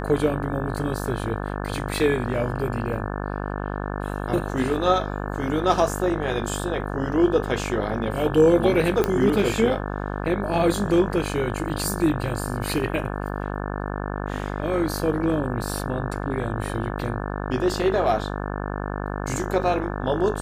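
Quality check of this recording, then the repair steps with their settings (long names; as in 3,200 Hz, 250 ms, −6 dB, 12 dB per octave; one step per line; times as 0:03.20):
mains buzz 50 Hz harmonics 35 −29 dBFS
0:09.04: click −8 dBFS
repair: click removal
hum removal 50 Hz, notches 35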